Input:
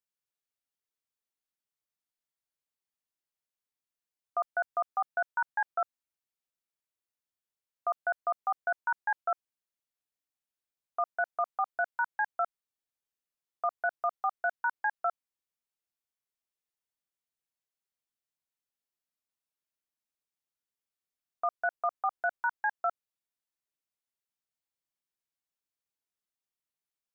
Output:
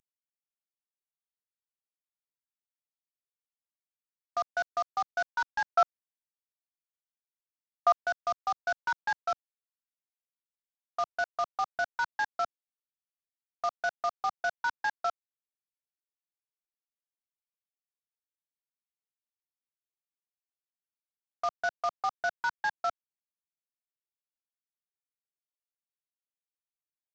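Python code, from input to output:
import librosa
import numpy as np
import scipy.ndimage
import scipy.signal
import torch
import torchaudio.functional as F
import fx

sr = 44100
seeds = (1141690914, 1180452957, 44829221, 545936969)

y = fx.cvsd(x, sr, bps=32000)
y = fx.peak_eq(y, sr, hz=1000.0, db=8.5, octaves=2.6, at=(5.69, 7.93))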